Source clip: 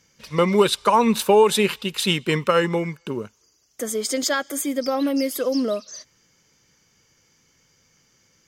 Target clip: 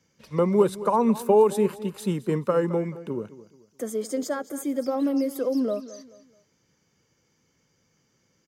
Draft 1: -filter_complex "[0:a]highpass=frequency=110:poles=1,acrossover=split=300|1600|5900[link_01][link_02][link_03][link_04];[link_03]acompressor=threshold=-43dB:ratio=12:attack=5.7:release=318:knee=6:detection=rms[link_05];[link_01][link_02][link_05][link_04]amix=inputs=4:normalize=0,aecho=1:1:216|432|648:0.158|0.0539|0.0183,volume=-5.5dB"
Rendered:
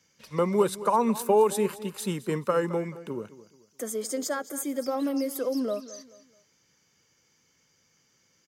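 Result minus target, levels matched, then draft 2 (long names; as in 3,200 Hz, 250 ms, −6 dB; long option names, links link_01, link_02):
1,000 Hz band +2.5 dB
-filter_complex "[0:a]highpass=frequency=110:poles=1,tiltshelf=frequency=980:gain=5,acrossover=split=300|1600|5900[link_01][link_02][link_03][link_04];[link_03]acompressor=threshold=-43dB:ratio=12:attack=5.7:release=318:knee=6:detection=rms[link_05];[link_01][link_02][link_05][link_04]amix=inputs=4:normalize=0,aecho=1:1:216|432|648:0.158|0.0539|0.0183,volume=-5.5dB"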